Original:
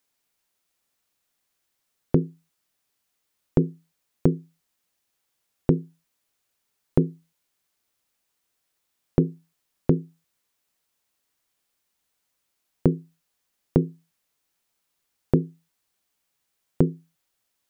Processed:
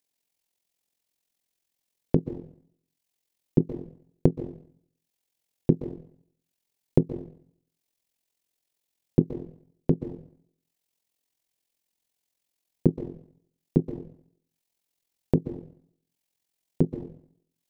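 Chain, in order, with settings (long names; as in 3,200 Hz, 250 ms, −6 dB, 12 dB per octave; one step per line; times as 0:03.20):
parametric band 1,300 Hz −10.5 dB 0.8 octaves
transient designer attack +4 dB, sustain −12 dB
parametric band 62 Hz −5.5 dB 0.7 octaves
dense smooth reverb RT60 0.61 s, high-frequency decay 1×, pre-delay 115 ms, DRR 11 dB
amplitude modulation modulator 43 Hz, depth 55%
level −1 dB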